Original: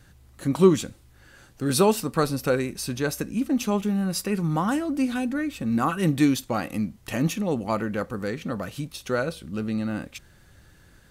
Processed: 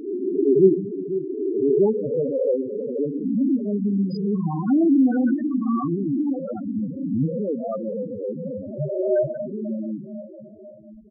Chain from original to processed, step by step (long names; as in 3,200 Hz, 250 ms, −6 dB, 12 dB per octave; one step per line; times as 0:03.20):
peak hold with a rise ahead of every peak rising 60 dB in 2.24 s
mains-hum notches 60/120/180/240/300/360 Hz
dynamic equaliser 390 Hz, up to +3 dB, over −28 dBFS, Q 0.71
0:04.68–0:05.34: leveller curve on the samples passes 3
0:05.96–0:06.77: hard clipping −18.5 dBFS, distortion −18 dB
0:08.68–0:09.34: EQ curve with evenly spaced ripples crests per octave 1.4, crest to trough 17 dB
repeating echo 494 ms, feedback 44%, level −14 dB
convolution reverb RT60 4.2 s, pre-delay 18 ms, DRR 8.5 dB
spectral peaks only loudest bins 4
level −1.5 dB